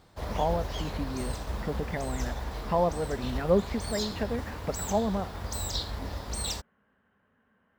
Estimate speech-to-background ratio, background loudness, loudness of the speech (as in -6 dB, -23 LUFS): 4.0 dB, -36.0 LUFS, -32.0 LUFS